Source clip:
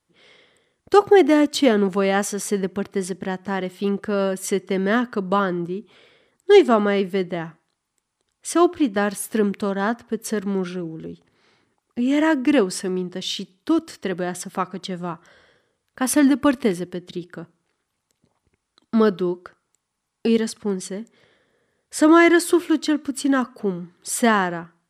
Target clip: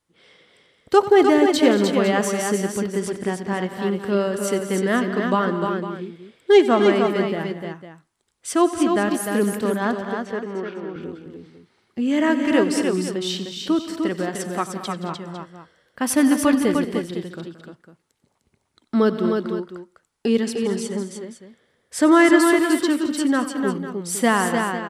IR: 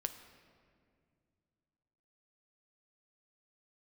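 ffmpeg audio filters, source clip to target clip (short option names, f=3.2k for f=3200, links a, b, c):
-filter_complex "[0:a]asettb=1/sr,asplit=3[a][b][c];[a]atrim=end=10.024[d];[b]atrim=start=10.02:end=10.96,asetpts=PTS-STARTPTS,afade=t=in:d=0.004:c=qsin,afade=t=out:st=0.936:d=0.004:c=qsin,highpass=340,lowpass=2.4k[e];[c]atrim=start=10.956[f];[d][e]acrossfade=d=0.004:c1=hsin:c2=qsin[g];[g][f]acrossfade=d=0.004:c1=qsin:c2=hsin,aecho=1:1:92|174|217|234|302|504:0.168|0.178|0.158|0.133|0.562|0.224,volume=-1dB"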